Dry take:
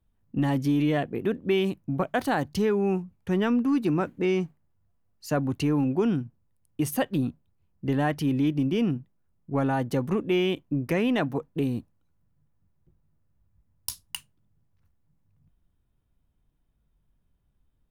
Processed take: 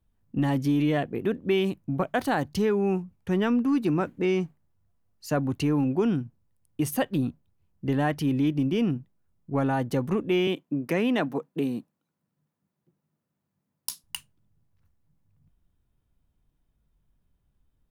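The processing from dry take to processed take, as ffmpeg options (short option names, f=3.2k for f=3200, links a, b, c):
-filter_complex "[0:a]asettb=1/sr,asplit=3[a][b][c];[a]atrim=end=10.474[d];[b]atrim=start=10.47:end=14.04,asetpts=PTS-STARTPTS,afade=t=in:d=0.004:c=qsin,afade=t=out:st=3.566:d=0.004:c=qsin,highpass=f=160:w=0.5412,highpass=f=160:w=1.3066[e];[c]atrim=start=14.036[f];[d][e]acrossfade=d=0.004:c1=hsin:c2=qsin[g];[g][f]acrossfade=d=0.004:c1=qsin:c2=hsin"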